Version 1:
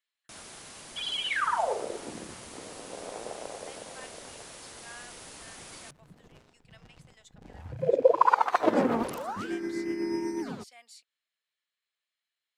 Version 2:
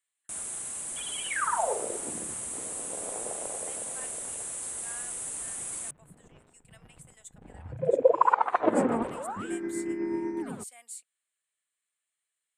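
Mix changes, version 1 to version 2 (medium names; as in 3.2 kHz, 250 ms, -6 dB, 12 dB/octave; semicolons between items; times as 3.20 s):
second sound: add Gaussian low-pass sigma 2.4 samples; master: add resonant high shelf 6.5 kHz +10 dB, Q 3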